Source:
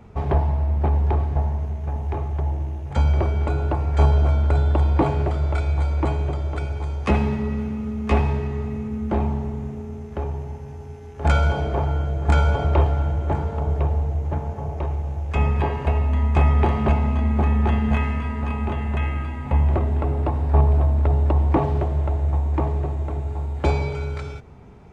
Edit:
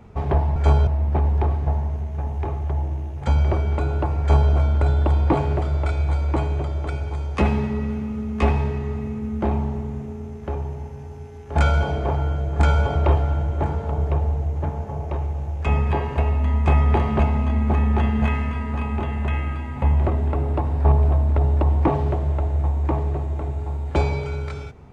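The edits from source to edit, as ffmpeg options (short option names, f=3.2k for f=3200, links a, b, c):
-filter_complex "[0:a]asplit=3[a][b][c];[a]atrim=end=0.562[d];[b]atrim=start=3.888:end=4.202[e];[c]atrim=start=0.558[f];[d][e]acrossfade=d=0.004:c1=hsin:c2=hsin[g];[g][f]acrossfade=d=0.004:c1=hsin:c2=hsin"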